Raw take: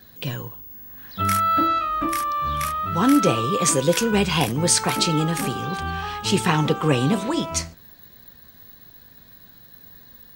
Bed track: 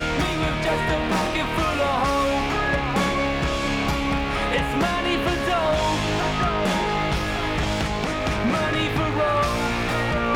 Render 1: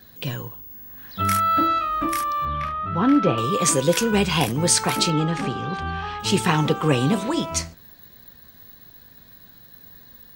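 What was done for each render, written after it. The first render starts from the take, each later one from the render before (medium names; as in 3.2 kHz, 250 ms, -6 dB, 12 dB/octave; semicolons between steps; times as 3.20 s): 2.45–3.38 s: distance through air 310 m; 5.10–6.20 s: distance through air 120 m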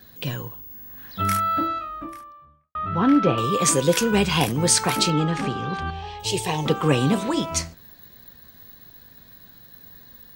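1.00–2.75 s: studio fade out; 5.90–6.66 s: static phaser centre 570 Hz, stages 4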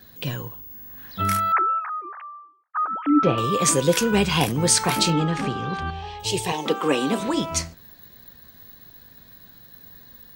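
1.52–3.23 s: formants replaced by sine waves; 4.78–5.22 s: doubling 24 ms -9 dB; 6.52–7.20 s: high-pass 230 Hz 24 dB/octave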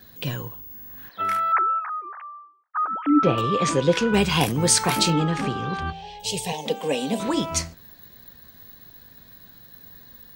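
1.09–2.84 s: three-band isolator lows -21 dB, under 360 Hz, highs -14 dB, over 3.1 kHz; 3.41–4.14 s: low-pass 4.1 kHz; 5.92–7.20 s: static phaser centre 340 Hz, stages 6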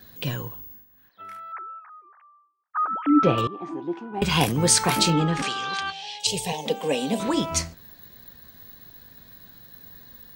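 0.63–2.80 s: dip -16 dB, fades 0.23 s; 3.47–4.22 s: two resonant band-passes 510 Hz, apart 1.2 oct; 5.42–6.27 s: frequency weighting ITU-R 468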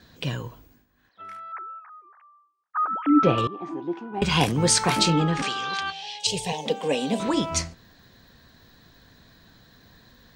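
low-pass 8.3 kHz 12 dB/octave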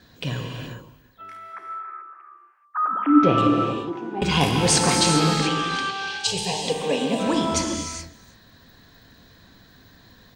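delay 329 ms -24 dB; gated-style reverb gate 450 ms flat, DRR 1 dB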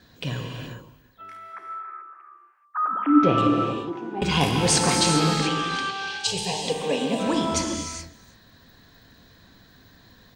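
trim -1.5 dB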